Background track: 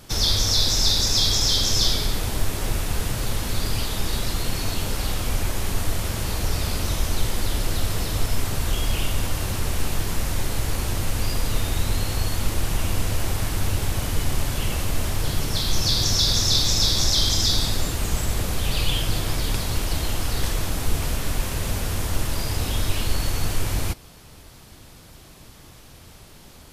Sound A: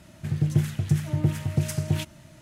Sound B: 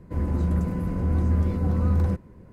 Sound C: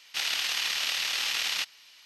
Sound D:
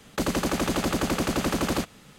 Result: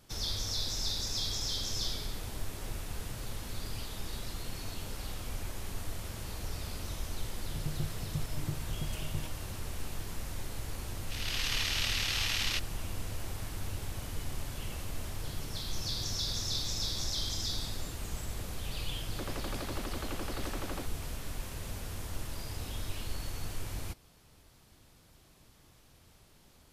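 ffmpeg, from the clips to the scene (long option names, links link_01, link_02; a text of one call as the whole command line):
ffmpeg -i bed.wav -i cue0.wav -i cue1.wav -i cue2.wav -i cue3.wav -filter_complex "[0:a]volume=-14.5dB[link_01];[3:a]dynaudnorm=framelen=130:gausssize=5:maxgain=14.5dB[link_02];[4:a]highpass=250,lowpass=4100[link_03];[1:a]atrim=end=2.41,asetpts=PTS-STARTPTS,volume=-15.5dB,afade=type=in:duration=0.004:curve=hsin,afade=type=out:start_time=2.406:duration=0.004:curve=hsin,adelay=7240[link_04];[link_02]atrim=end=2.05,asetpts=PTS-STARTPTS,volume=-17dB,afade=type=in:duration=0.004:curve=hsin,afade=type=out:start_time=2.046:duration=0.004:curve=hsin,adelay=10950[link_05];[link_03]atrim=end=2.18,asetpts=PTS-STARTPTS,volume=-13.5dB,afade=type=in:duration=0.004:curve=hsin,afade=type=out:start_time=2.176:duration=0.004:curve=hsin,adelay=19010[link_06];[link_01][link_04][link_05][link_06]amix=inputs=4:normalize=0" out.wav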